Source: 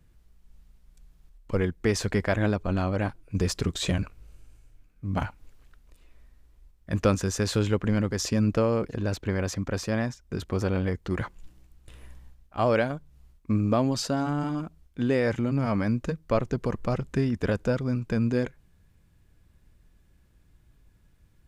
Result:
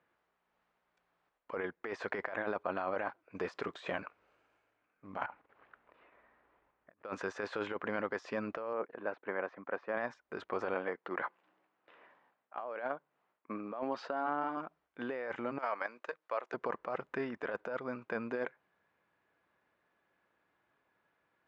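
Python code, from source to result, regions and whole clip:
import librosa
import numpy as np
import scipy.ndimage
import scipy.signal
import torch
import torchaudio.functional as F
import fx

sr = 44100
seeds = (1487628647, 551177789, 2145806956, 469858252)

y = fx.chain(x, sr, fx.lowpass(hz=2600.0, slope=12),
    fx.low_shelf(hz=200.0, db=4.0),
    fx.over_compress(threshold_db=-46.0, ratio=-1.0), at=(5.26, 7.05))
y = fx.chain(y, sr, fx.bandpass_edges(low_hz=150.0, high_hz=2400.0),
    fx.upward_expand(threshold_db=-44.0, expansion=1.5), at=(8.73, 9.97))
y = fx.chain(y, sr, fx.highpass(hz=180.0, slope=12),
    fx.air_absorb(metres=130.0), at=(10.74, 14.57))
y = fx.chain(y, sr, fx.highpass(hz=480.0, slope=12),
    fx.high_shelf(hz=3000.0, db=7.5),
    fx.level_steps(step_db=11), at=(15.58, 16.54))
y = scipy.signal.sosfilt(scipy.signal.butter(2, 700.0, 'highpass', fs=sr, output='sos'), y)
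y = fx.over_compress(y, sr, threshold_db=-36.0, ratio=-1.0)
y = scipy.signal.sosfilt(scipy.signal.butter(2, 1600.0, 'lowpass', fs=sr, output='sos'), y)
y = y * 10.0 ** (1.0 / 20.0)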